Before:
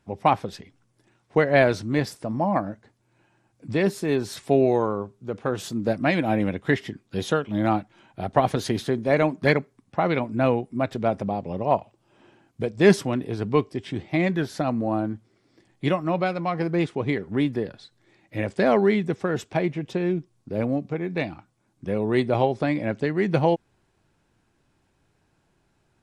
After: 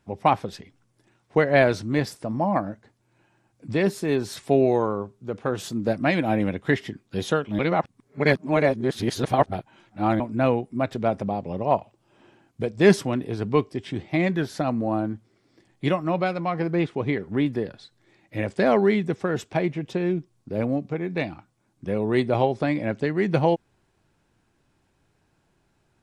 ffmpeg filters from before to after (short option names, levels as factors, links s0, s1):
-filter_complex "[0:a]asettb=1/sr,asplit=3[s0][s1][s2];[s0]atrim=end=16.404[s3];[s1]atrim=start=16.4:end=17.46,asetpts=PTS-STARTPTS,afade=t=in:d=0.004:c=qsin,afade=t=out:st=1.056:d=0.004:c=qsin,acrossover=split=4200[s4][s5];[s5]acompressor=threshold=0.00126:ratio=4:attack=1:release=60[s6];[s4][s6]amix=inputs=2:normalize=0[s7];[s2]atrim=start=17.456[s8];[s3][s7]acrossfade=d=0.004:c1=hsin:c2=qsin[s9];[s9][s8]acrossfade=d=0.004:c1=qsin:c2=hsin,asplit=3[s10][s11][s12];[s10]atrim=end=7.592[s13];[s11]atrim=start=7.588:end=10.202,asetpts=PTS-STARTPTS,areverse[s14];[s12]atrim=start=10.198[s15];[s13][s14]acrossfade=d=0.004:c1=hsin:c2=hsin[s16];[s16][s15]acrossfade=d=0.004:c1=hsin:c2=hsin"